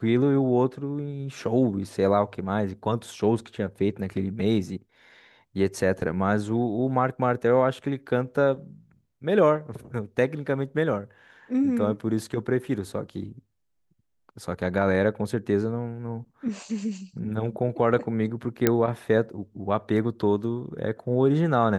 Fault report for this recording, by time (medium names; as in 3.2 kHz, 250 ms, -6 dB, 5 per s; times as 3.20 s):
18.67 s: pop -5 dBFS